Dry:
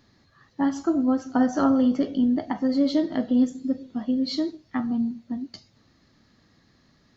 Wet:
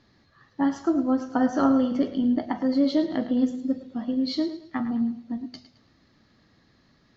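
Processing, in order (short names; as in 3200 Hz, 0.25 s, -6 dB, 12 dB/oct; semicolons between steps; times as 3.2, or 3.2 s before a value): LPF 5400 Hz 12 dB/oct; notches 50/100/150/200/250 Hz; on a send: thinning echo 0.108 s, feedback 36%, high-pass 220 Hz, level -12 dB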